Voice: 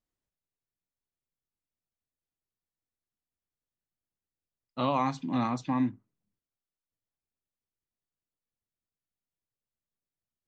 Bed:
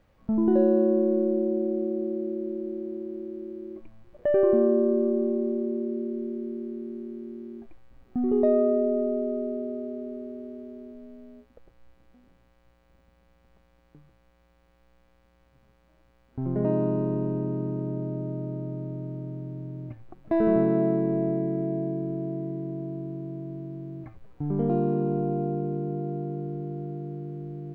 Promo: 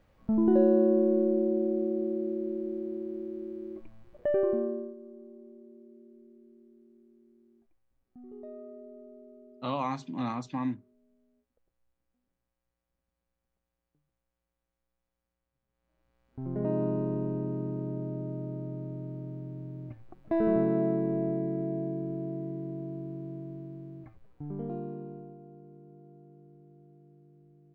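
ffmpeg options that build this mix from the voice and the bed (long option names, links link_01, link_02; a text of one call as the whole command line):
ffmpeg -i stem1.wav -i stem2.wav -filter_complex "[0:a]adelay=4850,volume=-4dB[link_01];[1:a]volume=18dB,afade=type=out:start_time=4.02:duration=0.93:silence=0.0794328,afade=type=in:start_time=15.68:duration=1.15:silence=0.105925,afade=type=out:start_time=23.32:duration=2.06:silence=0.11885[link_02];[link_01][link_02]amix=inputs=2:normalize=0" out.wav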